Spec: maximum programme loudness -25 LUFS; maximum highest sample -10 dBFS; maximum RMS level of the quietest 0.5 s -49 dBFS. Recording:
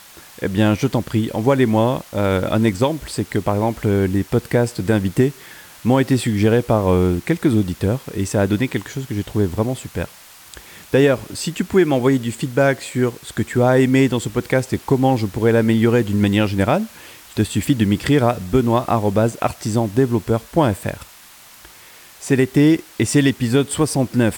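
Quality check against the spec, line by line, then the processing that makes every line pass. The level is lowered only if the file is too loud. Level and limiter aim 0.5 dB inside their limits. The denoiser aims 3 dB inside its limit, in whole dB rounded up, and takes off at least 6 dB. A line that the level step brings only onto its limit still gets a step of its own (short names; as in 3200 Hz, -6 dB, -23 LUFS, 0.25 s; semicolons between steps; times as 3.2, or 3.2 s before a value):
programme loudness -18.5 LUFS: fail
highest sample -3.0 dBFS: fail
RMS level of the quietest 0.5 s -44 dBFS: fail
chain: gain -7 dB; limiter -10.5 dBFS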